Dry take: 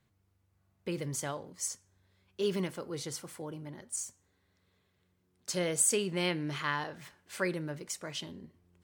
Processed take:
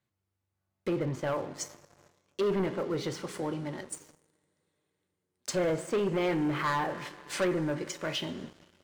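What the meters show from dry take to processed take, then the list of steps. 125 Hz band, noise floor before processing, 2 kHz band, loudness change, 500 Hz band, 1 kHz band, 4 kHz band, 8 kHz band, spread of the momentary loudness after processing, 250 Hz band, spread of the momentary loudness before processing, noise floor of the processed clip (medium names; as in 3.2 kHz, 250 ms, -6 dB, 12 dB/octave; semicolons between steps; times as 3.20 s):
+3.5 dB, -75 dBFS, +1.0 dB, +2.0 dB, +5.5 dB, +6.5 dB, 0.0 dB, -8.5 dB, 12 LU, +5.5 dB, 17 LU, -84 dBFS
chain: low-pass that closes with the level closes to 1.6 kHz, closed at -33 dBFS; bass shelf 120 Hz -9.5 dB; two-slope reverb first 0.26 s, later 4 s, from -19 dB, DRR 8.5 dB; waveshaping leveller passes 3; trim -2 dB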